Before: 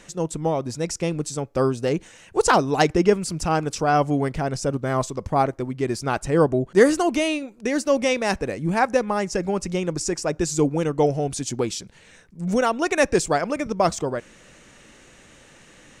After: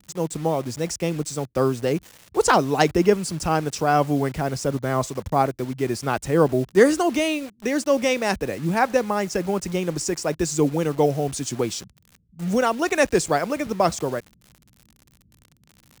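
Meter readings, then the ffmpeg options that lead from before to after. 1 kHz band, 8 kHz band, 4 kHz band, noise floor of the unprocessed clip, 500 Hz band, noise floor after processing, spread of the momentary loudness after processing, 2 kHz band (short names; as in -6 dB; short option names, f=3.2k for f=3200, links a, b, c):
0.0 dB, 0.0 dB, 0.0 dB, -51 dBFS, 0.0 dB, -60 dBFS, 8 LU, 0.0 dB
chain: -filter_complex "[0:a]highpass=f=42:w=0.5412,highpass=f=42:w=1.3066,acrossover=split=210[a][b];[b]acrusher=bits=6:mix=0:aa=0.000001[c];[a][c]amix=inputs=2:normalize=0"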